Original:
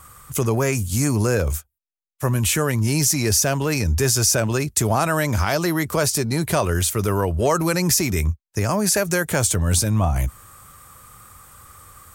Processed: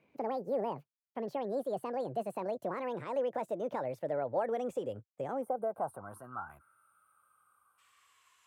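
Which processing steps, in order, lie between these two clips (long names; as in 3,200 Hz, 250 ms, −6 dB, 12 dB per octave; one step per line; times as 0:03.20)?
gliding playback speed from 199% → 88%
gain on a spectral selection 0:05.42–0:07.78, 1,600–8,400 Hz −22 dB
band-pass filter sweep 540 Hz → 2,700 Hz, 0:05.55–0:06.82
level −7.5 dB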